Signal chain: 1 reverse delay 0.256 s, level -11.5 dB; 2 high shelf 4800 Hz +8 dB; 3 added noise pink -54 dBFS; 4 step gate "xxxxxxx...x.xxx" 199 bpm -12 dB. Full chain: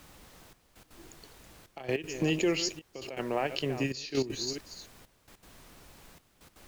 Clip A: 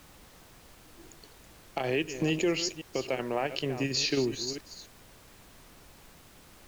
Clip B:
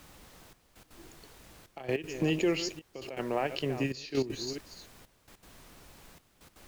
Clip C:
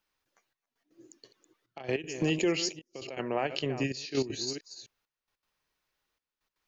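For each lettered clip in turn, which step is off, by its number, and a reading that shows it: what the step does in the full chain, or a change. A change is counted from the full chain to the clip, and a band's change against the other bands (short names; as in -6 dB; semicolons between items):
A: 4, crest factor change -1.5 dB; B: 2, 8 kHz band -5.0 dB; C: 3, momentary loudness spread change -8 LU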